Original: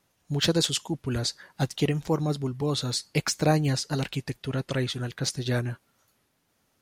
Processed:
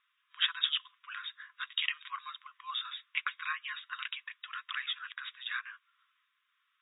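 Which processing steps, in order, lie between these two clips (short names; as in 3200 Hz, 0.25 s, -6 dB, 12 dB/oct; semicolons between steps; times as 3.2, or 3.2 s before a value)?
brick-wall FIR band-pass 1000–3800 Hz; 1.67–2.3 tilt +3.5 dB/oct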